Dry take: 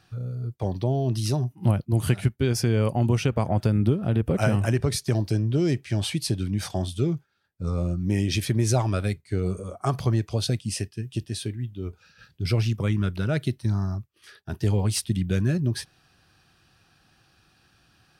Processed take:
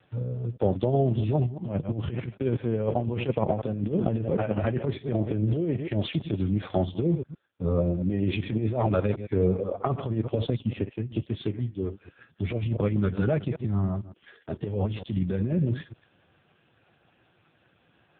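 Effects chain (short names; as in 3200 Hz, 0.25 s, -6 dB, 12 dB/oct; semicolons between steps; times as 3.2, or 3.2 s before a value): reverse delay 0.113 s, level -13 dB; vibrato 0.34 Hz 5.9 cents; negative-ratio compressor -24 dBFS, ratio -0.5; bell 520 Hz +8.5 dB 0.83 oct; AMR-NB 5.15 kbps 8000 Hz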